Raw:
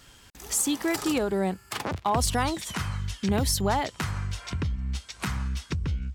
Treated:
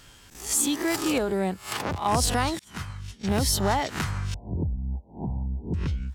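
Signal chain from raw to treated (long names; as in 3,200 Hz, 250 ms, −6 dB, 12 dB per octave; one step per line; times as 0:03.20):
peak hold with a rise ahead of every peak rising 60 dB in 0.35 s
0:02.59–0:03.40: downward expander −22 dBFS
0:04.34–0:05.74: Butterworth low-pass 900 Hz 96 dB per octave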